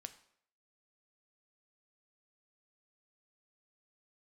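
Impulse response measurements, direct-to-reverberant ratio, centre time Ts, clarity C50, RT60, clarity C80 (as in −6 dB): 9.0 dB, 6 ms, 14.0 dB, 0.65 s, 17.0 dB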